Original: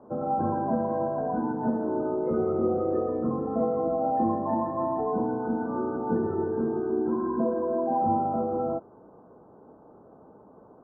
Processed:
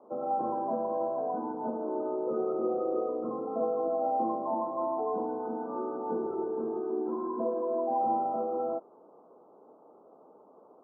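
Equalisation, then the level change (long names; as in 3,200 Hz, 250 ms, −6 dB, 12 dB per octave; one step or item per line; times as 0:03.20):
high-pass filter 390 Hz 12 dB per octave
elliptic low-pass filter 1,300 Hz, stop band 50 dB
high-frequency loss of the air 470 metres
0.0 dB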